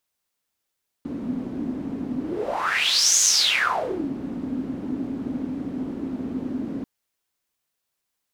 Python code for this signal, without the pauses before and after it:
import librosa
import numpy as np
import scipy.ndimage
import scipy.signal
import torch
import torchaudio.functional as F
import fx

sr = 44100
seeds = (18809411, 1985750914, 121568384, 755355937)

y = fx.whoosh(sr, seeds[0], length_s=5.79, peak_s=2.15, rise_s=1.07, fall_s=0.94, ends_hz=260.0, peak_hz=6500.0, q=7.5, swell_db=11.5)